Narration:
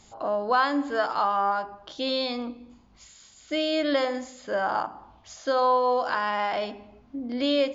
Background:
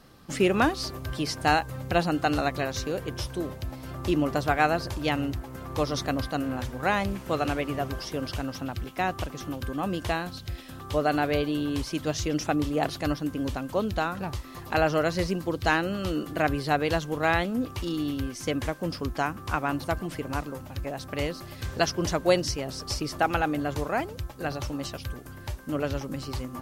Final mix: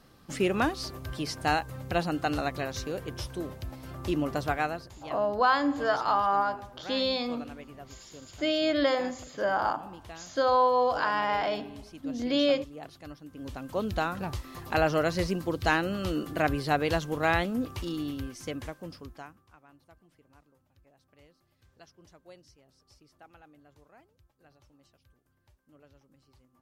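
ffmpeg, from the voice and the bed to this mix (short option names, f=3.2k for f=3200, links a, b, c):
-filter_complex "[0:a]adelay=4900,volume=-1dB[a];[1:a]volume=11.5dB,afade=t=out:st=4.48:d=0.42:silence=0.223872,afade=t=in:st=13.29:d=0.69:silence=0.16788,afade=t=out:st=17.44:d=2.04:silence=0.0375837[b];[a][b]amix=inputs=2:normalize=0"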